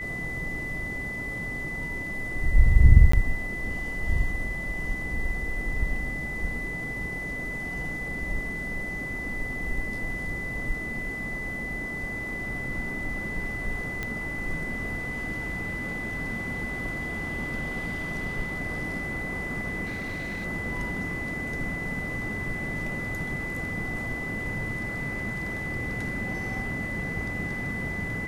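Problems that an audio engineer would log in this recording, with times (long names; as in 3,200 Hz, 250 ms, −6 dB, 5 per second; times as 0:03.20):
whistle 2,000 Hz −32 dBFS
0:03.12–0:03.13: drop-out 14 ms
0:14.03: click −17 dBFS
0:19.85–0:20.46: clipping −29 dBFS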